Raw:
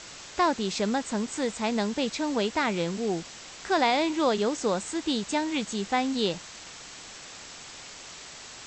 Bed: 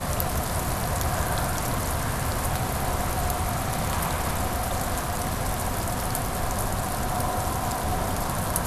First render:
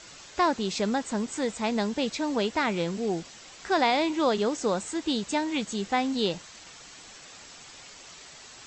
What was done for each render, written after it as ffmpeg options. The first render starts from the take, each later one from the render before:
-af "afftdn=nr=6:nf=-45"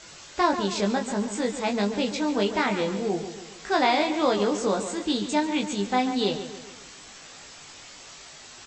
-filter_complex "[0:a]asplit=2[a][b];[b]adelay=20,volume=-3.5dB[c];[a][c]amix=inputs=2:normalize=0,asplit=2[d][e];[e]adelay=140,lowpass=f=4.1k:p=1,volume=-10dB,asplit=2[f][g];[g]adelay=140,lowpass=f=4.1k:p=1,volume=0.49,asplit=2[h][i];[i]adelay=140,lowpass=f=4.1k:p=1,volume=0.49,asplit=2[j][k];[k]adelay=140,lowpass=f=4.1k:p=1,volume=0.49,asplit=2[l][m];[m]adelay=140,lowpass=f=4.1k:p=1,volume=0.49[n];[d][f][h][j][l][n]amix=inputs=6:normalize=0"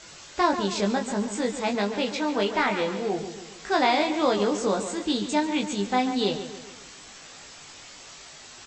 -filter_complex "[0:a]asettb=1/sr,asplit=3[a][b][c];[a]atrim=end=1.754[d];[b]atrim=start=1.75:end=3.19,asetpts=PTS-STARTPTS,afade=t=in:d=0.004:c=qsin,afade=t=out:st=1.436:d=0.004:c=qsin,asplit=2[e][f];[f]highpass=f=720:p=1,volume=8dB,asoftclip=type=tanh:threshold=-11dB[g];[e][g]amix=inputs=2:normalize=0,lowpass=f=3.1k:p=1,volume=-6dB[h];[c]atrim=start=3.186[i];[d][h]acrossfade=d=0.004:c1=hsin:c2=qsin[j];[j][i]acrossfade=d=0.004:c1=qsin:c2=hsin"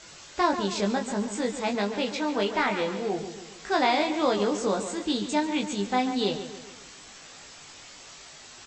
-af "volume=-1.5dB"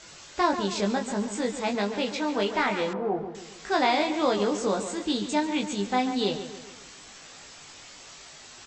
-filter_complex "[0:a]asettb=1/sr,asplit=3[a][b][c];[a]atrim=end=2.934[d];[b]atrim=start=2.93:end=3.35,asetpts=PTS-STARTPTS,afade=t=in:d=0.004:c=qsin,afade=t=out:st=0.416:d=0.004:c=qsin,lowpass=f=1.1k:t=q:w=1.6[e];[c]atrim=start=3.346[f];[d][e]acrossfade=d=0.004:c1=hsin:c2=qsin[g];[g][f]acrossfade=d=0.004:c1=qsin:c2=hsin"

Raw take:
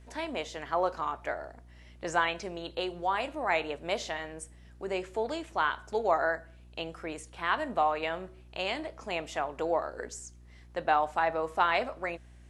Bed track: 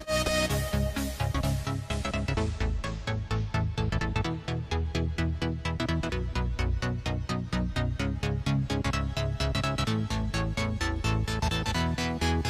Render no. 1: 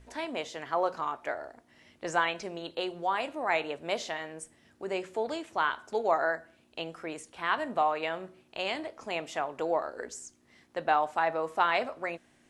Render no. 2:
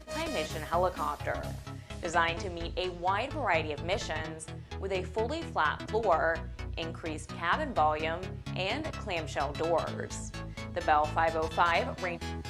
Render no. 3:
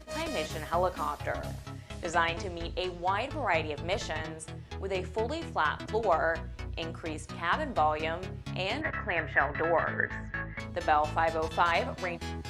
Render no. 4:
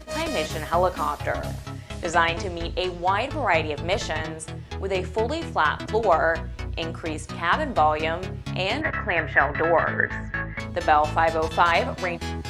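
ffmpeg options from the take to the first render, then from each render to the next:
-af "bandreject=f=60:t=h:w=4,bandreject=f=120:t=h:w=4,bandreject=f=180:t=h:w=4"
-filter_complex "[1:a]volume=-11dB[a];[0:a][a]amix=inputs=2:normalize=0"
-filter_complex "[0:a]asettb=1/sr,asplit=3[a][b][c];[a]atrim=end=8.814[d];[b]atrim=start=8.81:end=10.6,asetpts=PTS-STARTPTS,afade=t=in:d=0.004:c=qsin,afade=t=out:st=1.786:d=0.004:c=qsin,lowpass=f=1.8k:t=q:w=8.3[e];[c]atrim=start=10.596[f];[d][e]acrossfade=d=0.004:c1=hsin:c2=qsin[g];[g][f]acrossfade=d=0.004:c1=qsin:c2=hsin"
-af "volume=7dB"

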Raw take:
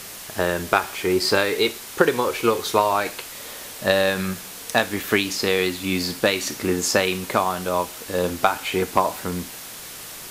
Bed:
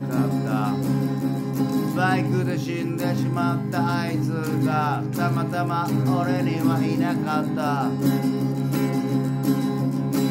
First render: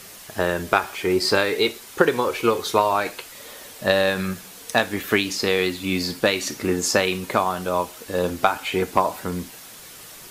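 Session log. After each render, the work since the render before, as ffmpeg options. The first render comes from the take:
-af "afftdn=nr=6:nf=-38"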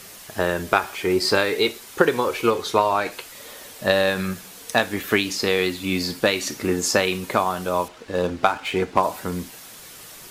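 -filter_complex "[0:a]asettb=1/sr,asplit=3[a][b][c];[a]atrim=end=2.504[d];[b]atrim=start=2.5:end=3.12,asetpts=PTS-STARTPTS,afade=t=in:d=0.004:c=qsin,afade=t=out:st=0.616:d=0.004:c=qsin,highshelf=f=9.9k:g=-8.5[e];[c]atrim=start=3.116[f];[d][e]acrossfade=d=0.004:c1=hsin:c2=qsin[g];[g][f]acrossfade=d=0.004:c1=qsin:c2=hsin,asettb=1/sr,asplit=3[h][i][j];[h]atrim=end=7.884[k];[i]atrim=start=7.88:end=9.03,asetpts=PTS-STARTPTS,afade=t=in:d=0.004:c=qsin,afade=t=out:st=1.146:d=0.004:c=qsin,adynamicsmooth=sensitivity=7.5:basefreq=3.3k[l];[j]atrim=start=9.026[m];[k][l]acrossfade=d=0.004:c1=hsin:c2=qsin[n];[n][m]acrossfade=d=0.004:c1=qsin:c2=hsin"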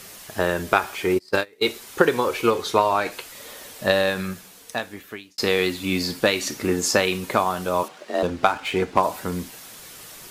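-filter_complex "[0:a]asplit=3[a][b][c];[a]afade=t=out:st=1.14:d=0.02[d];[b]agate=range=-29dB:threshold=-19dB:ratio=16:release=100:detection=peak,afade=t=in:st=1.14:d=0.02,afade=t=out:st=1.62:d=0.02[e];[c]afade=t=in:st=1.62:d=0.02[f];[d][e][f]amix=inputs=3:normalize=0,asettb=1/sr,asplit=3[g][h][i];[g]atrim=end=7.834[j];[h]atrim=start=7.83:end=8.23,asetpts=PTS-STARTPTS,afade=t=in:d=0.004:c=qsin,afade=t=out:st=0.396:d=0.004:c=qsin,afreqshift=130[k];[i]atrim=start=8.226[l];[j][k]acrossfade=d=0.004:c1=hsin:c2=qsin[m];[m][l]acrossfade=d=0.004:c1=qsin:c2=hsin,asplit=2[n][o];[n]atrim=end=5.38,asetpts=PTS-STARTPTS,afade=t=out:st=3.84:d=1.54[p];[o]atrim=start=5.38,asetpts=PTS-STARTPTS,afade=t=in:d=0.004:c=hsin[q];[p][q]concat=n=2:v=0:a=1"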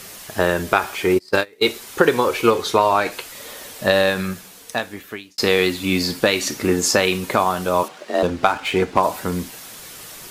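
-af "volume=4dB,alimiter=limit=-3dB:level=0:latency=1"

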